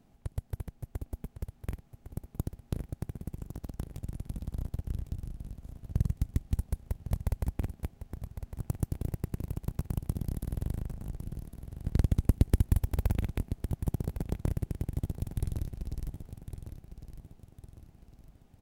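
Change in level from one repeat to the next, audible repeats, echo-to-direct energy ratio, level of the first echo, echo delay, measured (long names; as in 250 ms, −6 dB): −8.0 dB, 3, −9.5 dB, −10.0 dB, 1,106 ms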